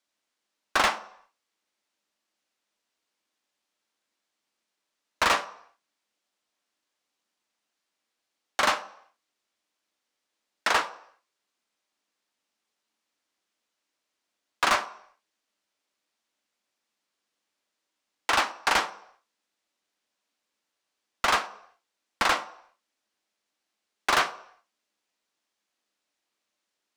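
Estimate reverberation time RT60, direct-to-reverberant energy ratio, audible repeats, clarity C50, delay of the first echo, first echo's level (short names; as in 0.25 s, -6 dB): 0.70 s, 11.0 dB, none, 16.5 dB, none, none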